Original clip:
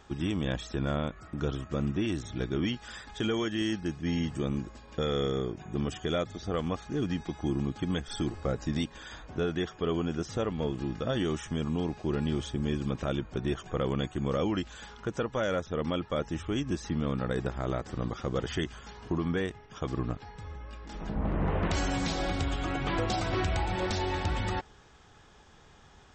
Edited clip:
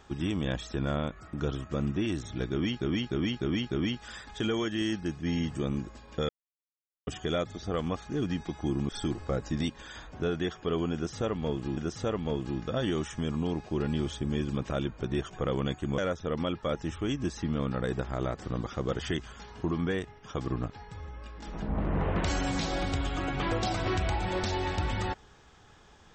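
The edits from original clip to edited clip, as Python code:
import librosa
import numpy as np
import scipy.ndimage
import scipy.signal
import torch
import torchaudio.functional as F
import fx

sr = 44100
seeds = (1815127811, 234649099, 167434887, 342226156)

y = fx.edit(x, sr, fx.repeat(start_s=2.51, length_s=0.3, count=5),
    fx.silence(start_s=5.09, length_s=0.78),
    fx.cut(start_s=7.69, length_s=0.36),
    fx.repeat(start_s=10.1, length_s=0.83, count=2),
    fx.cut(start_s=14.31, length_s=1.14), tone=tone)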